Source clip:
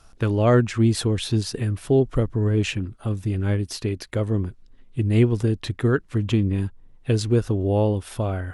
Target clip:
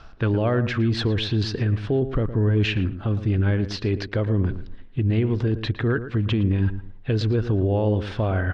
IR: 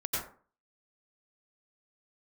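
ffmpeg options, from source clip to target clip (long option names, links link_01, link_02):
-filter_complex "[0:a]lowpass=frequency=4300:width=0.5412,lowpass=frequency=4300:width=1.3066,equalizer=frequency=1600:width=6.3:gain=5,areverse,acompressor=mode=upward:threshold=-20dB:ratio=2.5,areverse,alimiter=limit=-17.5dB:level=0:latency=1:release=72,asplit=2[link_01][link_02];[link_02]adelay=113,lowpass=frequency=1600:poles=1,volume=-11dB,asplit=2[link_03][link_04];[link_04]adelay=113,lowpass=frequency=1600:poles=1,volume=0.26,asplit=2[link_05][link_06];[link_06]adelay=113,lowpass=frequency=1600:poles=1,volume=0.26[link_07];[link_01][link_03][link_05][link_07]amix=inputs=4:normalize=0,volume=3dB"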